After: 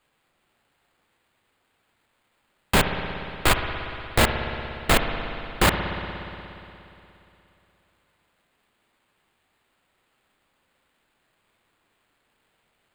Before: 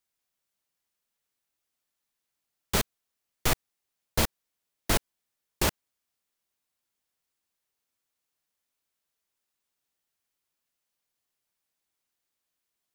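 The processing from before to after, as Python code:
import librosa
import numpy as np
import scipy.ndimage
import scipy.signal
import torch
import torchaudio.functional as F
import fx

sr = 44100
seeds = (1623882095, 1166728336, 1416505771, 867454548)

p1 = fx.fold_sine(x, sr, drive_db=13, ceiling_db=-10.0)
p2 = x + F.gain(torch.from_numpy(p1), -6.5).numpy()
p3 = fx.sample_hold(p2, sr, seeds[0], rate_hz=5800.0, jitter_pct=0)
y = fx.rev_spring(p3, sr, rt60_s=3.0, pass_ms=(59,), chirp_ms=50, drr_db=5.0)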